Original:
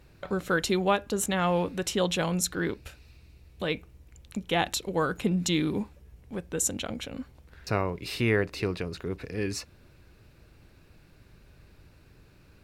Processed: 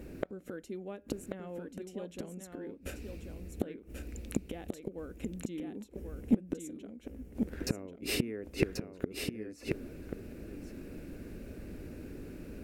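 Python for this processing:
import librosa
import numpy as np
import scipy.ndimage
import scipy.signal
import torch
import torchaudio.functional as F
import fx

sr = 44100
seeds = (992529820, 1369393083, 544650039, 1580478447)

y = fx.graphic_eq(x, sr, hz=(125, 250, 500, 1000, 4000), db=(-7, 12, 5, -9, -10))
y = fx.gate_flip(y, sr, shuts_db=-23.0, range_db=-29)
y = y + 10.0 ** (-5.5 / 20.0) * np.pad(y, (int(1086 * sr / 1000.0), 0))[:len(y)]
y = y * librosa.db_to_amplitude(8.0)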